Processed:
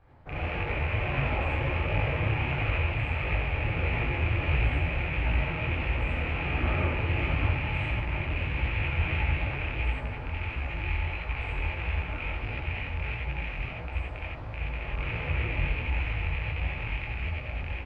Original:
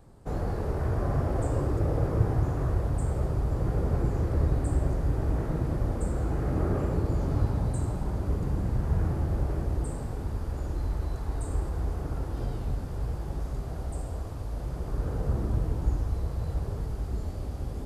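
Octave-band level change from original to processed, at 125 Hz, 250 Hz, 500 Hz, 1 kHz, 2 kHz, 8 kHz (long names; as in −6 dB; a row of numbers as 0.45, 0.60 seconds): −1.5 dB, −4.5 dB, −2.5 dB, +3.5 dB, +18.0 dB, below −20 dB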